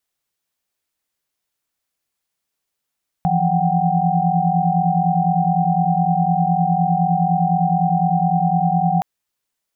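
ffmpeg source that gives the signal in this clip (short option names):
-f lavfi -i "aevalsrc='0.1*(sin(2*PI*164.81*t)+sin(2*PI*174.61*t)+sin(2*PI*739.99*t)+sin(2*PI*783.99*t))':d=5.77:s=44100"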